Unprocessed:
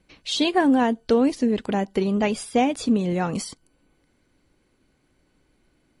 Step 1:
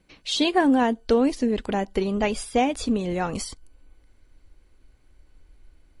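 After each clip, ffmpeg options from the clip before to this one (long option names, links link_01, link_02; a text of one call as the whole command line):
ffmpeg -i in.wav -af "asubboost=boost=12:cutoff=54" out.wav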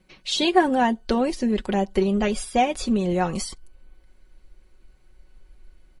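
ffmpeg -i in.wav -af "aecho=1:1:5.4:0.65" out.wav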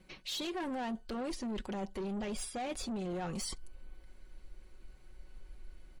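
ffmpeg -i in.wav -af "alimiter=limit=-16dB:level=0:latency=1:release=20,asoftclip=type=tanh:threshold=-25dB,areverse,acompressor=threshold=-38dB:ratio=4,areverse" out.wav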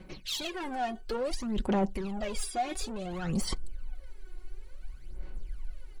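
ffmpeg -i in.wav -filter_complex "[0:a]aphaser=in_gain=1:out_gain=1:delay=2.8:decay=0.71:speed=0.57:type=sinusoidal,asplit=2[link_01][link_02];[link_02]asoftclip=type=hard:threshold=-29.5dB,volume=-11.5dB[link_03];[link_01][link_03]amix=inputs=2:normalize=0" out.wav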